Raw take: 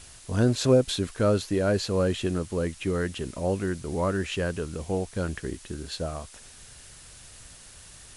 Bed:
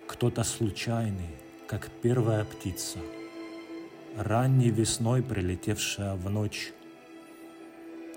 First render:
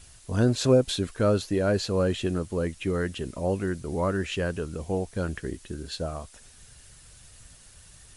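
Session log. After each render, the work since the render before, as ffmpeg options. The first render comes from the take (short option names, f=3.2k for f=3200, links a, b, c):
-af "afftdn=nr=6:nf=-49"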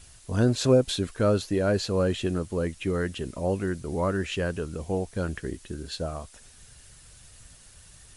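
-af anull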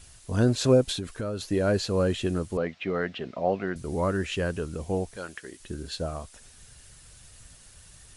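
-filter_complex "[0:a]asettb=1/sr,asplit=3[a][b][c];[a]atrim=end=0.924[d];[b]atrim=start=0.92:end=1.47,asetpts=PTS-STARTPTS,afade=t=in:d=0.004:c=qsin,afade=t=out:st=0.546:d=0.004:c=qsin,acompressor=threshold=-27dB:ratio=12:attack=3.2:release=140:knee=1:detection=peak[e];[c]atrim=start=1.466[f];[d][e]acrossfade=d=0.004:c1=hsin:c2=qsin[g];[g][f]acrossfade=d=0.004:c1=qsin:c2=hsin,asettb=1/sr,asplit=3[h][i][j];[h]atrim=end=2.574[k];[i]atrim=start=2.57:end=3.76,asetpts=PTS-STARTPTS,afade=t=in:d=0.004:c=qsin,afade=t=out:st=1.186:d=0.004:c=qsin,highpass=180,equalizer=f=320:t=q:w=4:g=-5,equalizer=f=700:t=q:w=4:g=9,equalizer=f=1.3k:t=q:w=4:g=3,equalizer=f=2.1k:t=q:w=4:g=4,lowpass=f=4.4k:w=0.5412,lowpass=f=4.4k:w=1.3066[l];[j]atrim=start=3.756[m];[k][l]acrossfade=d=0.004:c1=hsin:c2=qsin[n];[n][m]acrossfade=d=0.004:c1=qsin:c2=hsin,asettb=1/sr,asplit=3[o][p][q];[o]atrim=end=5.164[r];[p]atrim=start=5.16:end=5.6,asetpts=PTS-STARTPTS,afade=t=in:d=0.004:c=qsin,afade=t=out:st=0.436:d=0.004:c=qsin,highpass=f=960:p=1[s];[q]atrim=start=5.596[t];[r][s]acrossfade=d=0.004:c1=hsin:c2=qsin[u];[u][t]acrossfade=d=0.004:c1=qsin:c2=hsin"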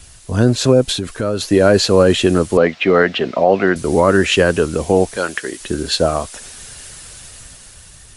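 -filter_complex "[0:a]acrossover=split=220[a][b];[b]dynaudnorm=f=360:g=7:m=9dB[c];[a][c]amix=inputs=2:normalize=0,alimiter=level_in=9dB:limit=-1dB:release=50:level=0:latency=1"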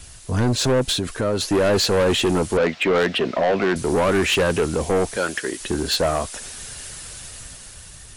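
-af "asoftclip=type=tanh:threshold=-14.5dB"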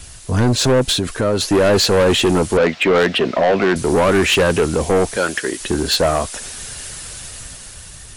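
-af "volume=4.5dB"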